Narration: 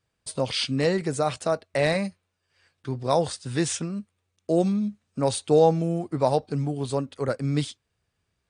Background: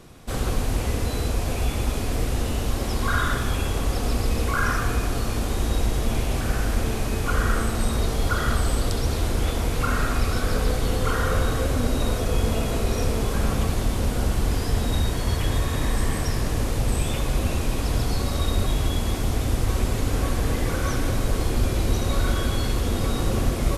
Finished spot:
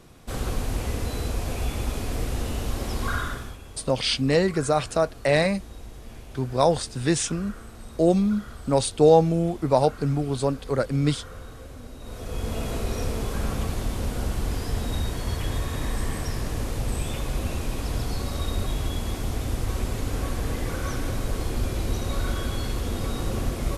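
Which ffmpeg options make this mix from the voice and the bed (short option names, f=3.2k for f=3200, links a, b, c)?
-filter_complex "[0:a]adelay=3500,volume=2.5dB[a];[1:a]volume=10.5dB,afade=t=out:st=3.07:d=0.51:silence=0.177828,afade=t=in:st=12.01:d=0.66:silence=0.199526[b];[a][b]amix=inputs=2:normalize=0"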